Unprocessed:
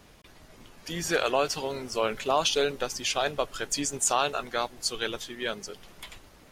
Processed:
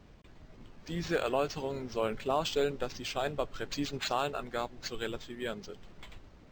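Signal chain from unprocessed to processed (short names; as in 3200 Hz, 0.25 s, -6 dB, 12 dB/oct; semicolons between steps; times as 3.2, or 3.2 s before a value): low shelf 390 Hz +9.5 dB; decimation joined by straight lines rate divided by 4×; gain -7.5 dB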